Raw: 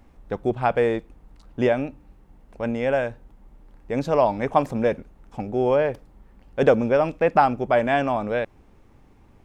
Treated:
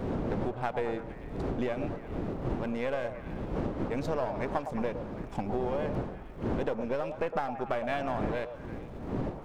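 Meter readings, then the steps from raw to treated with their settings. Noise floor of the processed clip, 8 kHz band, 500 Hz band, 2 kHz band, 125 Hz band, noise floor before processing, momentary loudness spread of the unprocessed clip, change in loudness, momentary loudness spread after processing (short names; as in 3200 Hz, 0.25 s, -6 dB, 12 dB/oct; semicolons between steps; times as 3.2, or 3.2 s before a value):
-43 dBFS, n/a, -11.0 dB, -10.5 dB, -4.0 dB, -54 dBFS, 15 LU, -11.5 dB, 6 LU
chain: half-wave gain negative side -7 dB; wind noise 360 Hz -32 dBFS; compressor 6:1, threshold -35 dBFS, peak gain reduction 20.5 dB; on a send: delay with a stepping band-pass 0.111 s, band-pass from 650 Hz, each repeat 0.7 oct, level -6 dB; on the sum: gain +5.5 dB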